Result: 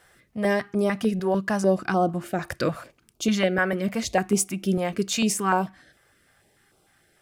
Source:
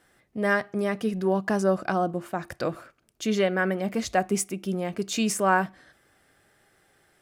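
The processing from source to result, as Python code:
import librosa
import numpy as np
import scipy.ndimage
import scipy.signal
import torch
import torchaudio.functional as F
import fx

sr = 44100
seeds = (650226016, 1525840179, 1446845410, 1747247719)

p1 = fx.rider(x, sr, range_db=5, speed_s=0.5)
p2 = x + (p1 * 10.0 ** (2.5 / 20.0))
p3 = fx.filter_held_notch(p2, sr, hz=6.7, low_hz=260.0, high_hz=1800.0)
y = p3 * 10.0 ** (-3.5 / 20.0)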